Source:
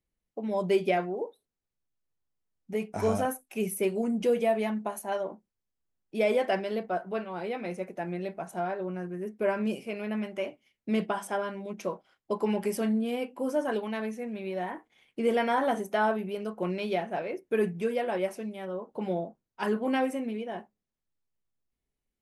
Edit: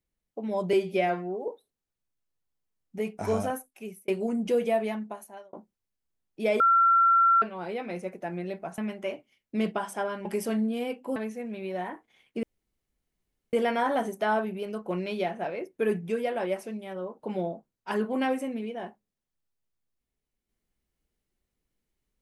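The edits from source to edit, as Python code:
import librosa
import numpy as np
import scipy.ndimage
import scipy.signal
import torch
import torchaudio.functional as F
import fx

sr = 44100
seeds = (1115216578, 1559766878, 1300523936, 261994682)

y = fx.edit(x, sr, fx.stretch_span(start_s=0.73, length_s=0.5, factor=1.5),
    fx.fade_out_span(start_s=2.85, length_s=0.98, curve='qsin'),
    fx.fade_out_span(start_s=4.52, length_s=0.76),
    fx.bleep(start_s=6.35, length_s=0.82, hz=1360.0, db=-17.0),
    fx.cut(start_s=8.53, length_s=1.59),
    fx.cut(start_s=11.59, length_s=0.98),
    fx.cut(start_s=13.48, length_s=0.5),
    fx.insert_room_tone(at_s=15.25, length_s=1.1), tone=tone)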